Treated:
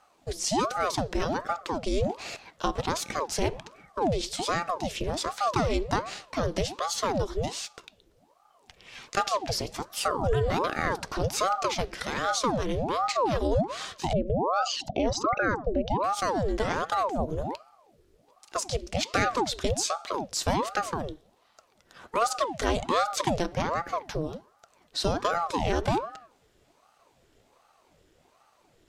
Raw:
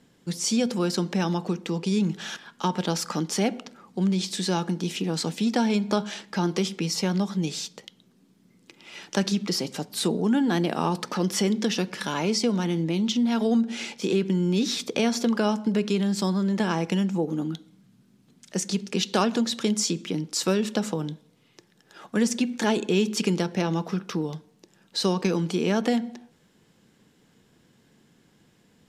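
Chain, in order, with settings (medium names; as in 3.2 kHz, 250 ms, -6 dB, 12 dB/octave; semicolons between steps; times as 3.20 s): 14.13–16.04 s: resonances exaggerated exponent 2; ring modulator with a swept carrier 590 Hz, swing 75%, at 1.3 Hz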